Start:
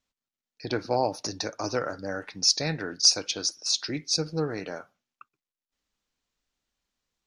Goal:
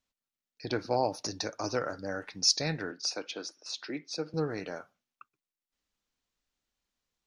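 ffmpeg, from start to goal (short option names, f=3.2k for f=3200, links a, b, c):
-filter_complex "[0:a]asettb=1/sr,asplit=3[a][b][c];[a]atrim=end=2.914[d];[b]atrim=start=2.91:end=4.34,asetpts=PTS-STARTPTS,afade=t=in:d=0.004:c=qsin,afade=t=out:st=1.426:d=0.004:c=qsin,acrossover=split=200 3100:gain=0.0794 1 0.2[e][f][g];[e][f][g]amix=inputs=3:normalize=0[h];[c]atrim=start=4.336[i];[d][h]acrossfade=d=0.004:c1=hsin:c2=qsin[j];[j][i]acrossfade=d=0.004:c1=qsin:c2=hsin,volume=-3dB"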